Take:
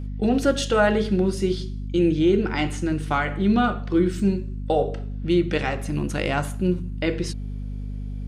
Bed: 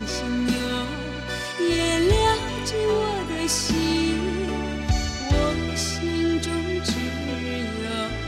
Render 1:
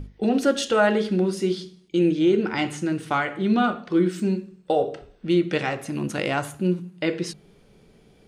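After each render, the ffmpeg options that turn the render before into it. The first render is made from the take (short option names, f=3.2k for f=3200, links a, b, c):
-af "bandreject=f=50:t=h:w=6,bandreject=f=100:t=h:w=6,bandreject=f=150:t=h:w=6,bandreject=f=200:t=h:w=6,bandreject=f=250:t=h:w=6"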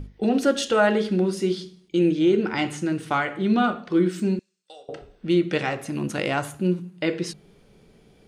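-filter_complex "[0:a]asettb=1/sr,asplit=3[a][b][c];[a]atrim=end=4.394[d];[b]atrim=start=4.39:end=4.89,asetpts=PTS-STARTPTS,afade=t=in:d=0.004:c=qsin,afade=t=out:st=0.496:d=0.004:c=qsin,bandpass=f=6.2k:t=q:w=1.6[e];[c]atrim=start=4.886[f];[d][e]acrossfade=d=0.004:c1=hsin:c2=qsin[g];[g][f]acrossfade=d=0.004:c1=qsin:c2=hsin"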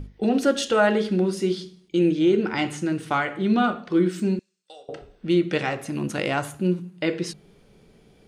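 -af anull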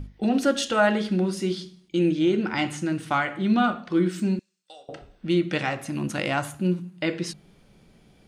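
-af "equalizer=f=430:w=3.7:g=-8.5"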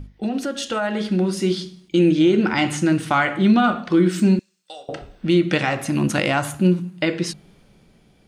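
-af "alimiter=limit=-16dB:level=0:latency=1:release=131,dynaudnorm=f=300:g=9:m=8.5dB"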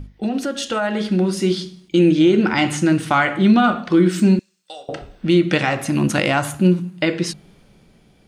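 -af "volume=2dB"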